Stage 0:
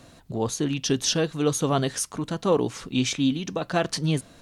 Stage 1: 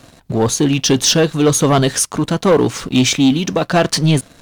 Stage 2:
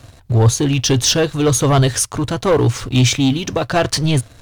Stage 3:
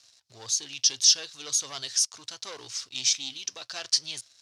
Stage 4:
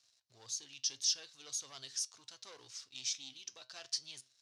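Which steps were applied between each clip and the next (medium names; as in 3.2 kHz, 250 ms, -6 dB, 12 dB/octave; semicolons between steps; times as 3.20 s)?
waveshaping leveller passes 2; trim +5 dB
resonant low shelf 140 Hz +7 dB, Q 3; trim -1.5 dB
band-pass filter 5.3 kHz, Q 3
flange 1 Hz, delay 7.1 ms, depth 1.1 ms, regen +86%; trim -9 dB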